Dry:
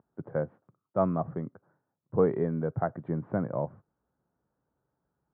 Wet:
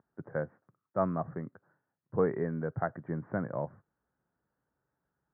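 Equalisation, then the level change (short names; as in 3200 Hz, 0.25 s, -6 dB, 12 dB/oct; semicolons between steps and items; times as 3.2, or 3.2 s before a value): synth low-pass 1800 Hz, resonance Q 3.5; air absorption 190 m; -4.0 dB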